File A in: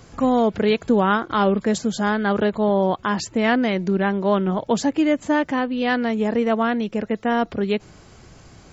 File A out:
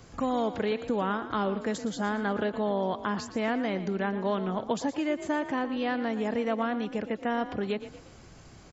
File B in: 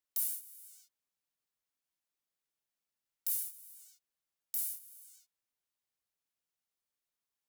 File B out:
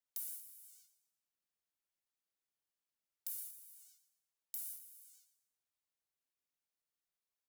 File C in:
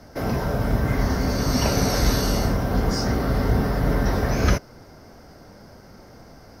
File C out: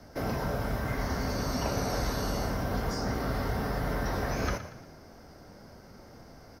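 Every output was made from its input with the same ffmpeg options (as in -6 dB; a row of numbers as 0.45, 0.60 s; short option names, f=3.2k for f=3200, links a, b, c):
-filter_complex "[0:a]acrossover=split=570|1500[a][b][c];[a]acompressor=threshold=-25dB:ratio=4[d];[b]acompressor=threshold=-26dB:ratio=4[e];[c]acompressor=threshold=-35dB:ratio=4[f];[d][e][f]amix=inputs=3:normalize=0,asplit=5[g][h][i][j][k];[h]adelay=117,afreqshift=34,volume=-12.5dB[l];[i]adelay=234,afreqshift=68,volume=-20.2dB[m];[j]adelay=351,afreqshift=102,volume=-28dB[n];[k]adelay=468,afreqshift=136,volume=-35.7dB[o];[g][l][m][n][o]amix=inputs=5:normalize=0,volume=-5dB"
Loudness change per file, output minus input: -9.0, -9.5, -9.0 LU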